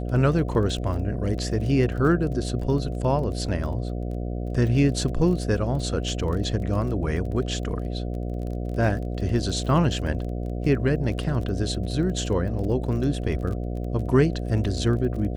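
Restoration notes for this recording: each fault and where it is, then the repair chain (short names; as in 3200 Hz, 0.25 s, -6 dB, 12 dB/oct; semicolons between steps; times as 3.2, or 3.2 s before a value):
buzz 60 Hz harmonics 12 -29 dBFS
crackle 28/s -33 dBFS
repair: de-click; de-hum 60 Hz, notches 12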